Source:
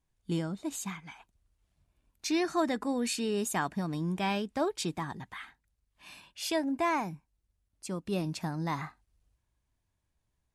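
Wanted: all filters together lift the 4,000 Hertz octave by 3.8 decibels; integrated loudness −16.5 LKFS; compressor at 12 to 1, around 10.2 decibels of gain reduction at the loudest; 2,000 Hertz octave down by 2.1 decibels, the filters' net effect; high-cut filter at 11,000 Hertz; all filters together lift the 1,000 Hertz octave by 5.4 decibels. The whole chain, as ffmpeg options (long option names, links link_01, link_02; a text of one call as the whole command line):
ffmpeg -i in.wav -af "lowpass=11000,equalizer=frequency=1000:width_type=o:gain=7.5,equalizer=frequency=2000:width_type=o:gain=-6.5,equalizer=frequency=4000:width_type=o:gain=6,acompressor=threshold=-31dB:ratio=12,volume=20dB" out.wav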